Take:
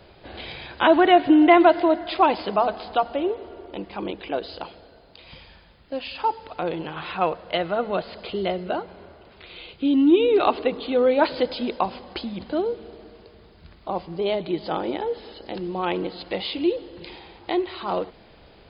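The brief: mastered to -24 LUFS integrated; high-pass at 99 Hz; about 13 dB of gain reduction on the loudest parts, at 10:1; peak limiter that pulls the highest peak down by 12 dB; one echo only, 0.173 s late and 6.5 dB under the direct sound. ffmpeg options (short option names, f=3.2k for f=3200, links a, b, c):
-af "highpass=99,acompressor=threshold=-23dB:ratio=10,alimiter=limit=-22dB:level=0:latency=1,aecho=1:1:173:0.473,volume=8dB"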